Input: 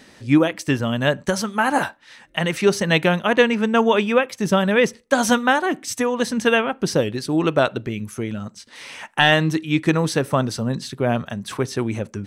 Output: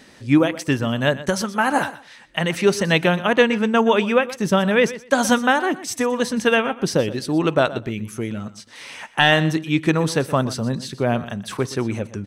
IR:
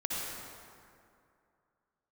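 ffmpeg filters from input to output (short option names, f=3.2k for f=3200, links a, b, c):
-af "aecho=1:1:122|244:0.158|0.0285"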